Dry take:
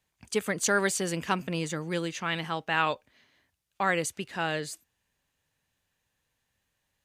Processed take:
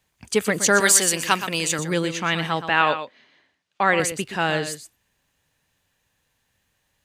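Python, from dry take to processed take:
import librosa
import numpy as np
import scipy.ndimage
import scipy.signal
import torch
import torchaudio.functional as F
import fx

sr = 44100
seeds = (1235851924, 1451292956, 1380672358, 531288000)

y = fx.tilt_eq(x, sr, slope=3.0, at=(0.8, 1.79))
y = fx.bandpass_edges(y, sr, low_hz=180.0, high_hz=5000.0, at=(2.69, 4.0))
y = y + 10.0 ** (-10.5 / 20.0) * np.pad(y, (int(121 * sr / 1000.0), 0))[:len(y)]
y = F.gain(torch.from_numpy(y), 7.5).numpy()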